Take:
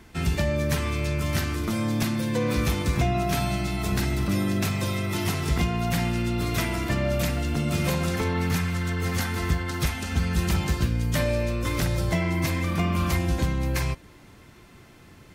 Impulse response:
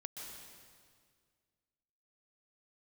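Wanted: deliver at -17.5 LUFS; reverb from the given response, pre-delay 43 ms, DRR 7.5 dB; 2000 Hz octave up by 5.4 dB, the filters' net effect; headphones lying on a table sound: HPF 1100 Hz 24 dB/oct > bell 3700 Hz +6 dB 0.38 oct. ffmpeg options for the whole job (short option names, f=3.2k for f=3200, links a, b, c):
-filter_complex "[0:a]equalizer=f=2k:t=o:g=6,asplit=2[a][b];[1:a]atrim=start_sample=2205,adelay=43[c];[b][c]afir=irnorm=-1:irlink=0,volume=-5dB[d];[a][d]amix=inputs=2:normalize=0,highpass=f=1.1k:w=0.5412,highpass=f=1.1k:w=1.3066,equalizer=f=3.7k:t=o:w=0.38:g=6,volume=10.5dB"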